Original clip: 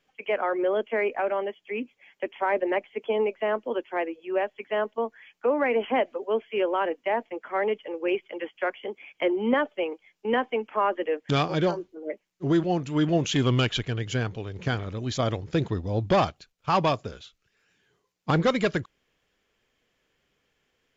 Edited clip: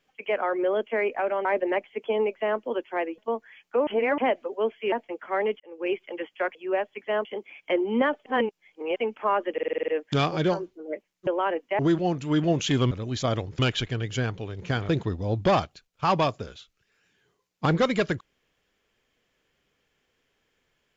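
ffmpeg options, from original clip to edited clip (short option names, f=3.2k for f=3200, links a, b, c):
-filter_complex "[0:a]asplit=23[a][b][c][d][e][f][g][h][i][j][k][l][m][n][o][p][q][r][s][t][u][v][w];[a]atrim=end=1.452[x];[b]atrim=start=2.448:end=4.182[y];[c]atrim=start=4.878:end=5.572[z];[d]atrim=start=5.568:end=5.882,asetpts=PTS-STARTPTS,areverse[aa];[e]atrim=start=5.878:end=6.622[ab];[f]atrim=start=7.138:end=7.82,asetpts=PTS-STARTPTS,afade=t=out:st=0.678:d=0.004:c=hsin[ac];[g]atrim=start=7.82:end=8.772,asetpts=PTS-STARTPTS,afade=t=in:d=0.35[ad];[h]atrim=start=4.178:end=4.882[ae];[i]atrim=start=8.768:end=9.782[af];[j]atrim=start=9.778:end=10.482,asetpts=PTS-STARTPTS,areverse[ag];[k]atrim=start=10.478:end=11.102[ah];[l]atrim=start=11.048:end=11.102[ai];[m]atrim=start=11.048:end=11.102[aj];[n]atrim=start=11.048:end=11.102[ak];[o]atrim=start=11.048:end=11.102[al];[p]atrim=start=11.048:end=11.102[am];[q]atrim=start=11.048:end=11.102[an];[r]atrim=start=11.048:end=12.442[ao];[s]atrim=start=6.618:end=7.142[ap];[t]atrim=start=12.438:end=13.562[aq];[u]atrim=start=14.858:end=15.542[ar];[v]atrim=start=13.558:end=14.862[as];[w]atrim=start=15.538[at];[x][y]acrossfade=d=0.004:c1=hsin:c2=hsin[au];[au][z]acrossfade=d=0.004:c1=hsin:c2=hsin[av];[av][aa]acrossfade=d=0.004:c1=hsin:c2=hsin[aw];[aw][ab]acrossfade=d=0.004:c1=hsin:c2=hsin[ax];[ac][ad]concat=n=2:v=0:a=1[ay];[ax][ay]acrossfade=d=0.004:c1=hsin:c2=hsin[az];[az][ae]acrossfade=d=0.004:c1=hsin:c2=hsin[ba];[ba][af]acrossfade=d=0.004:c1=hsin:c2=hsin[bb];[bb][ag]acrossfade=d=0.004:c1=hsin:c2=hsin[bc];[bc][ah]acrossfade=d=0.004:c1=hsin:c2=hsin[bd];[bd][ai]acrossfade=d=0.004:c1=hsin:c2=hsin[be];[be][aj]acrossfade=d=0.004:c1=hsin:c2=hsin[bf];[bf][ak]acrossfade=d=0.004:c1=hsin:c2=hsin[bg];[bg][al]acrossfade=d=0.004:c1=hsin:c2=hsin[bh];[bh][am]acrossfade=d=0.004:c1=hsin:c2=hsin[bi];[bi][an]acrossfade=d=0.004:c1=hsin:c2=hsin[bj];[bj][ao]acrossfade=d=0.004:c1=hsin:c2=hsin[bk];[bk][ap]acrossfade=d=0.004:c1=hsin:c2=hsin[bl];[bl][aq]acrossfade=d=0.004:c1=hsin:c2=hsin[bm];[bm][ar]acrossfade=d=0.004:c1=hsin:c2=hsin[bn];[bn][as]acrossfade=d=0.004:c1=hsin:c2=hsin[bo];[bo][at]acrossfade=d=0.004:c1=hsin:c2=hsin"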